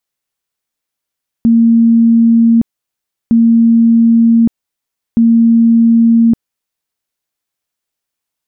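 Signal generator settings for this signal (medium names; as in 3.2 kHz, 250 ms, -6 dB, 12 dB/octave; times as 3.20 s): tone bursts 230 Hz, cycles 268, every 1.86 s, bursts 3, -4.5 dBFS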